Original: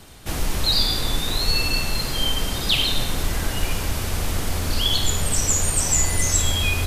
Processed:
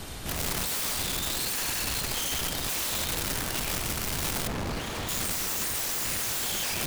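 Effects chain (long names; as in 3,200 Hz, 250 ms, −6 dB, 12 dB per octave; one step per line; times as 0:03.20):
wrap-around overflow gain 20 dB
0:04.47–0:05.09: low-pass filter 1,200 Hz 6 dB per octave
brickwall limiter −31.5 dBFS, peak gain reduction 11.5 dB
level +6 dB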